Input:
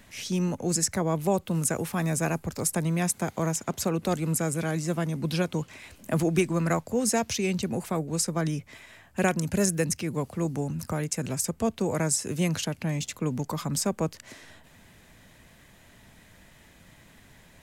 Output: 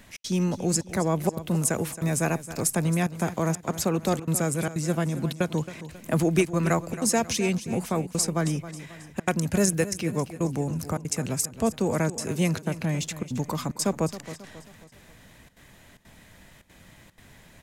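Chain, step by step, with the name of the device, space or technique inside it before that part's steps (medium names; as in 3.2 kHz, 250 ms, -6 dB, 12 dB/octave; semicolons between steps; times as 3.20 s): trance gate with a delay (trance gate "xx.xxxxxxx.xxx" 186 bpm -60 dB; feedback delay 270 ms, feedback 46%, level -14 dB); trim +2 dB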